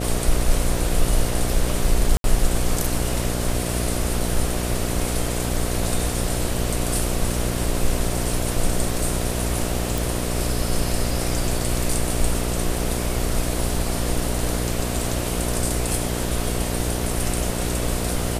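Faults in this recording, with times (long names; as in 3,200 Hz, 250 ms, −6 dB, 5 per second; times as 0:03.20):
mains buzz 60 Hz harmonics 12 −26 dBFS
0:02.17–0:02.24: drop-out 72 ms
0:09.98: click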